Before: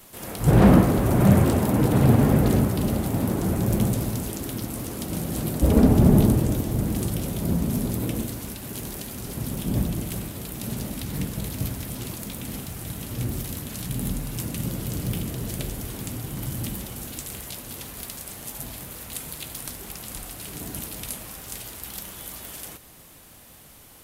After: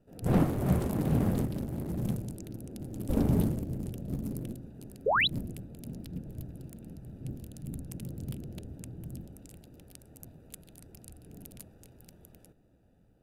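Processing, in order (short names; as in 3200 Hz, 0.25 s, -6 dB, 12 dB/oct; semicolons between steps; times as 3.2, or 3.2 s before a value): Wiener smoothing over 41 samples; painted sound rise, 9.2–9.59, 400–4300 Hz -15 dBFS; granular stretch 0.55×, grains 23 ms; gain -8.5 dB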